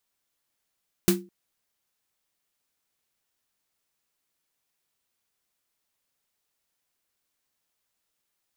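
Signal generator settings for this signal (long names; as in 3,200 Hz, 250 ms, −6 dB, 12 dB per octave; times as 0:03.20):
synth snare length 0.21 s, tones 190 Hz, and 350 Hz, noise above 660 Hz, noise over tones −3 dB, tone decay 0.31 s, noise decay 0.17 s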